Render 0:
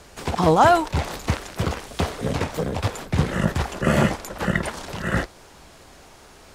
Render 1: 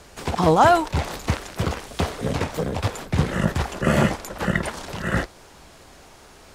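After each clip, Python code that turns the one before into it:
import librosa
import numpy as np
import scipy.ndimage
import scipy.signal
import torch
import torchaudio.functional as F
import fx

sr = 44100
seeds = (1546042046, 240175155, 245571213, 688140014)

y = x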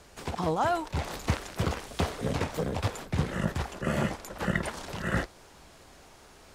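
y = fx.rider(x, sr, range_db=4, speed_s=0.5)
y = F.gain(torch.from_numpy(y), -8.5).numpy()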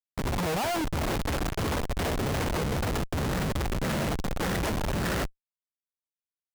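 y = fx.schmitt(x, sr, flips_db=-36.0)
y = F.gain(torch.from_numpy(y), 4.0).numpy()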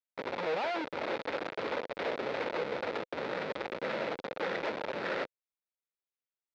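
y = fx.cabinet(x, sr, low_hz=490.0, low_slope=12, high_hz=3600.0, hz=(510.0, 730.0, 1100.0, 1700.0, 3000.0), db=(5, -5, -6, -3, -7))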